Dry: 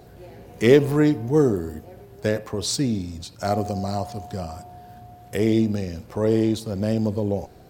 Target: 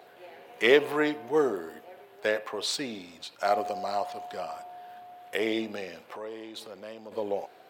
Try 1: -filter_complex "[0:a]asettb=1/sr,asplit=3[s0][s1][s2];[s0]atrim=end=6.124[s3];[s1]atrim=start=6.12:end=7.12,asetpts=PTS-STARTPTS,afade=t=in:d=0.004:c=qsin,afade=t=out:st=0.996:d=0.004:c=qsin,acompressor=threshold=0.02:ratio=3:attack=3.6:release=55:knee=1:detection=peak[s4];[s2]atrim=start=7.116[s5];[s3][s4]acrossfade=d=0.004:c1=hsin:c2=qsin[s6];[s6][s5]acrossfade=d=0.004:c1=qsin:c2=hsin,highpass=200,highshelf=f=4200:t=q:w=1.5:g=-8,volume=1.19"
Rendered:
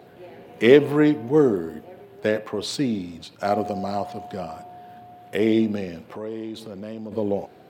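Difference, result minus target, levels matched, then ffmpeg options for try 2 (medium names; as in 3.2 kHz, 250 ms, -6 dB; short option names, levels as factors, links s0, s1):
250 Hz band +6.0 dB
-filter_complex "[0:a]asettb=1/sr,asplit=3[s0][s1][s2];[s0]atrim=end=6.124[s3];[s1]atrim=start=6.12:end=7.12,asetpts=PTS-STARTPTS,afade=t=in:d=0.004:c=qsin,afade=t=out:st=0.996:d=0.004:c=qsin,acompressor=threshold=0.02:ratio=3:attack=3.6:release=55:knee=1:detection=peak[s4];[s2]atrim=start=7.116[s5];[s3][s4]acrossfade=d=0.004:c1=hsin:c2=qsin[s6];[s6][s5]acrossfade=d=0.004:c1=qsin:c2=hsin,highpass=620,highshelf=f=4200:t=q:w=1.5:g=-8,volume=1.19"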